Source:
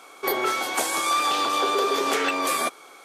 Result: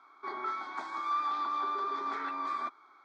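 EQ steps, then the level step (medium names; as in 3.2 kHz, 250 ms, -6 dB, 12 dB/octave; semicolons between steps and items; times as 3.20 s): cabinet simulation 330–3400 Hz, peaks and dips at 730 Hz -8 dB, 1.7 kHz -7 dB, 2.5 kHz -3 dB; static phaser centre 1.2 kHz, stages 4; -6.0 dB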